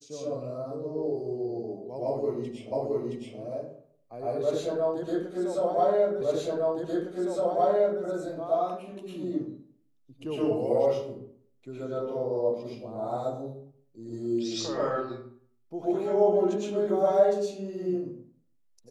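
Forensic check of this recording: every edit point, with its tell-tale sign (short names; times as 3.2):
2.72 repeat of the last 0.67 s
6.21 repeat of the last 1.81 s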